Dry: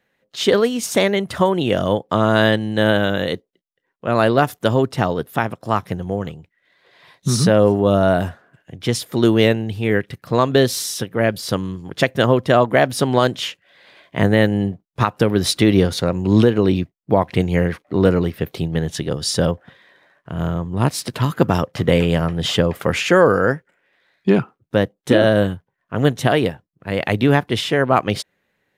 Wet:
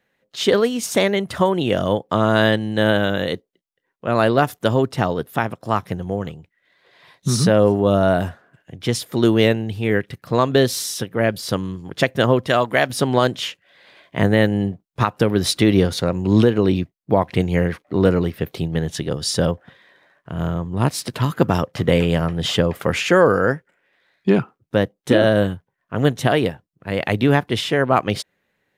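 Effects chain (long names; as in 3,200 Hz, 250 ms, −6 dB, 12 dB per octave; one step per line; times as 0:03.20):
0:12.47–0:12.90: tilt shelving filter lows −5 dB, about 1,300 Hz
level −1 dB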